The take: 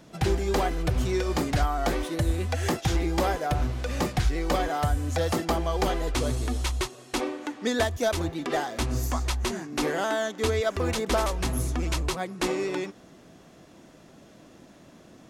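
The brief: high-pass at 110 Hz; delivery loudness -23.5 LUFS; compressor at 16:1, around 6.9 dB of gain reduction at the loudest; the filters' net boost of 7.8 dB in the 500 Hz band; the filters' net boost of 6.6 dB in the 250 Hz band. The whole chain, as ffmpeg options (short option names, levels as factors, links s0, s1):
-af "highpass=110,equalizer=f=250:t=o:g=5.5,equalizer=f=500:t=o:g=8.5,acompressor=threshold=0.0891:ratio=16,volume=1.5"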